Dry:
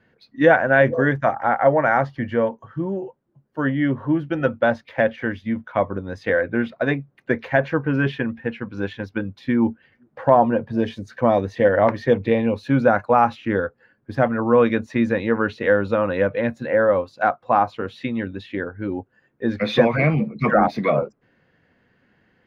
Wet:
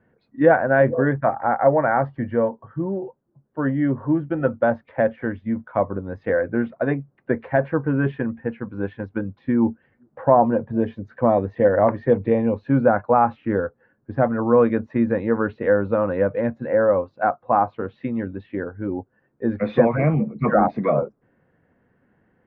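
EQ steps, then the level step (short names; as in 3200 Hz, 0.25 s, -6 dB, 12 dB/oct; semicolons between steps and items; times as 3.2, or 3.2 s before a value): LPF 1300 Hz 12 dB/oct; 0.0 dB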